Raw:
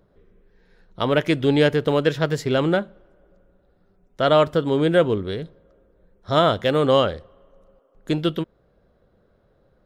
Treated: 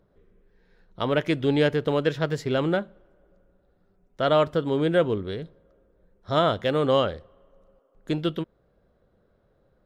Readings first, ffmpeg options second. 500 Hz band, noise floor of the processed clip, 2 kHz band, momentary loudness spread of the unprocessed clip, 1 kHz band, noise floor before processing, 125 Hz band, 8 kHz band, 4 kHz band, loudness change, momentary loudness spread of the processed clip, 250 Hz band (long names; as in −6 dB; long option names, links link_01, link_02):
−4.0 dB, −66 dBFS, −4.5 dB, 13 LU, −4.0 dB, −62 dBFS, −4.0 dB, can't be measured, −5.0 dB, −4.0 dB, 13 LU, −4.0 dB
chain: -af "highshelf=frequency=7100:gain=-5.5,volume=-4dB"